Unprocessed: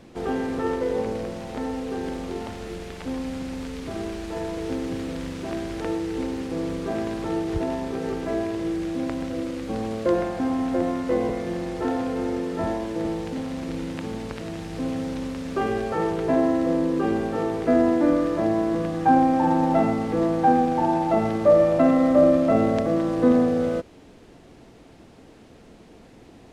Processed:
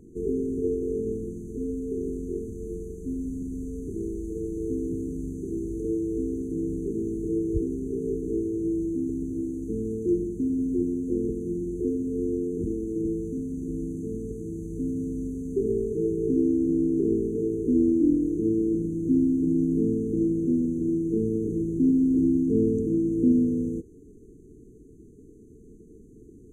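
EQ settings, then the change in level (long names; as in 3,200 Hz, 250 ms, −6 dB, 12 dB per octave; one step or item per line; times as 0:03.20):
linear-phase brick-wall band-stop 460–6,000 Hz
low-shelf EQ 96 Hz +10 dB
parametric band 620 Hz +10.5 dB 1.7 octaves
−5.5 dB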